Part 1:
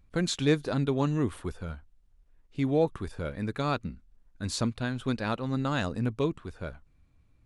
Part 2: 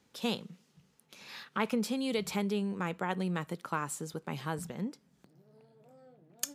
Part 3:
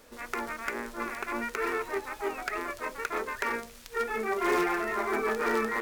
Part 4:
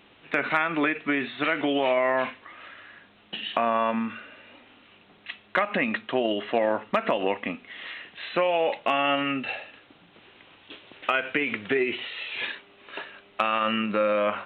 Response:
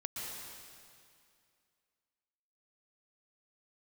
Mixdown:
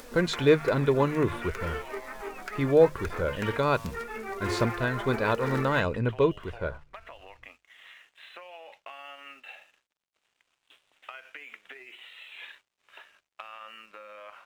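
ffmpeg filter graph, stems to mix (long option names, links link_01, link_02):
-filter_complex "[0:a]bass=frequency=250:gain=-4,treble=frequency=4000:gain=-14,aecho=1:1:2:0.45,acontrast=87,volume=-2dB[link_01];[1:a]acrusher=samples=33:mix=1:aa=0.000001,aeval=exprs='abs(val(0))':channel_layout=same,volume=-16.5dB[link_02];[2:a]acompressor=mode=upward:threshold=-31dB:ratio=2.5,flanger=delay=3.9:depth=3.6:regen=61:speed=0.94:shape=sinusoidal,volume=-1.5dB[link_03];[3:a]acompressor=threshold=-27dB:ratio=6,highpass=720,aeval=exprs='sgn(val(0))*max(abs(val(0))-0.00224,0)':channel_layout=same,volume=-11dB[link_04];[link_01][link_02][link_03][link_04]amix=inputs=4:normalize=0,bandreject=frequency=50:width_type=h:width=6,bandreject=frequency=100:width_type=h:width=6,bandreject=frequency=150:width_type=h:width=6"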